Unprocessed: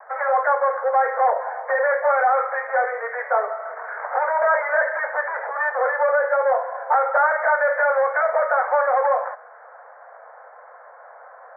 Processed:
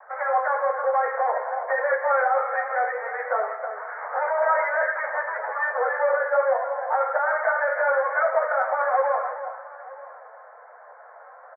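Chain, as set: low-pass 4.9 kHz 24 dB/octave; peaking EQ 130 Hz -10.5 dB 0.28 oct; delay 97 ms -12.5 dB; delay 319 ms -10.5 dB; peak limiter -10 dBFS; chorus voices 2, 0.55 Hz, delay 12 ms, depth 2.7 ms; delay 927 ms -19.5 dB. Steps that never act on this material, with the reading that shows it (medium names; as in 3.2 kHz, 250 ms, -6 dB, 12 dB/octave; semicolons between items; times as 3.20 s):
low-pass 4.9 kHz: input has nothing above 2.3 kHz; peaking EQ 130 Hz: input has nothing below 400 Hz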